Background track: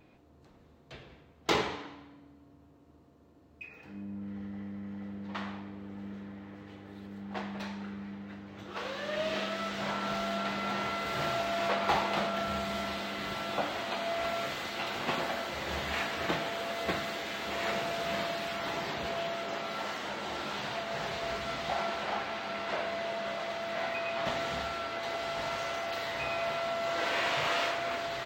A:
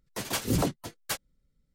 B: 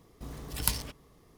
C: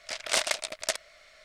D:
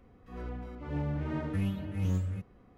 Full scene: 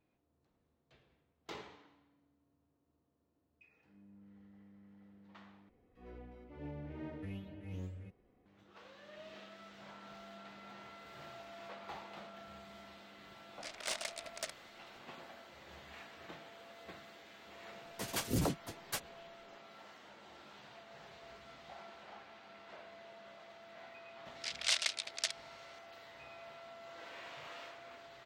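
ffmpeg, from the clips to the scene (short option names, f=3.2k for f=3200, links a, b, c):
-filter_complex "[3:a]asplit=2[a][b];[0:a]volume=-19.5dB[c];[4:a]firequalizer=gain_entry='entry(180,0);entry(350,7);entry(780,4);entry(1200,-2);entry(2100,6);entry(7600,-3)':delay=0.05:min_phase=1[d];[a]asoftclip=type=tanh:threshold=-15dB[e];[b]bandpass=f=3.8k:t=q:w=1:csg=0[f];[c]asplit=2[g][h];[g]atrim=end=5.694[i];[d]atrim=end=2.77,asetpts=PTS-STARTPTS,volume=-14.5dB[j];[h]atrim=start=8.456[k];[e]atrim=end=1.44,asetpts=PTS-STARTPTS,volume=-11.5dB,afade=t=in:d=0.004:c=hsin,afade=t=out:st=1.436:d=0.004:c=hsin,adelay=13540[l];[1:a]atrim=end=1.74,asetpts=PTS-STARTPTS,volume=-7dB,afade=t=in:d=0.004:c=hsin,afade=t=out:st=1.736:d=0.004:c=hsin,adelay=17830[m];[f]atrim=end=1.44,asetpts=PTS-STARTPTS,volume=-2.5dB,afade=t=in:d=0.004:c=hsin,afade=t=out:st=1.436:d=0.004:c=hsin,adelay=24350[n];[i][j]acrossfade=d=0.004:c1=hsin:c2=hsin[o];[o][k]acrossfade=d=0.004:c1=hsin:c2=hsin[p];[p][l][m][n]amix=inputs=4:normalize=0"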